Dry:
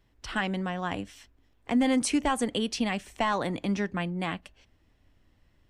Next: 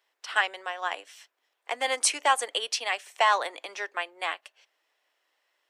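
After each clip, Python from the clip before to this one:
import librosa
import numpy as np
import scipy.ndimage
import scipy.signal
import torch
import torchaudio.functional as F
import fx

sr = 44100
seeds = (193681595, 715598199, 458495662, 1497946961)

y = scipy.signal.sosfilt(scipy.signal.bessel(8, 760.0, 'highpass', norm='mag', fs=sr, output='sos'), x)
y = fx.upward_expand(y, sr, threshold_db=-41.0, expansion=1.5)
y = y * 10.0 ** (8.5 / 20.0)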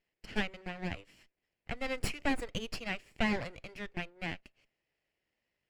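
y = fx.lower_of_two(x, sr, delay_ms=0.41)
y = fx.lowpass(y, sr, hz=1200.0, slope=6)
y = fx.peak_eq(y, sr, hz=840.0, db=-7.0, octaves=2.0)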